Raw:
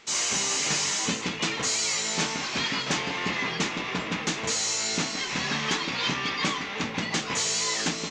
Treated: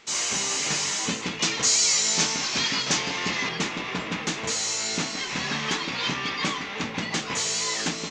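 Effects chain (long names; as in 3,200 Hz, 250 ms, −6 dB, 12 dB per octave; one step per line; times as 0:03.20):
0:01.39–0:03.49: parametric band 5,900 Hz +8 dB 1.2 octaves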